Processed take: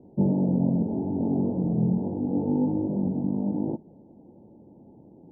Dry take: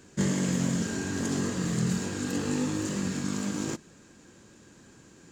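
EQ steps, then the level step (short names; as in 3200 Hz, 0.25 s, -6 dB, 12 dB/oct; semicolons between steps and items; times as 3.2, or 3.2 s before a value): rippled Chebyshev low-pass 900 Hz, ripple 3 dB; low shelf 96 Hz -7 dB; +6.5 dB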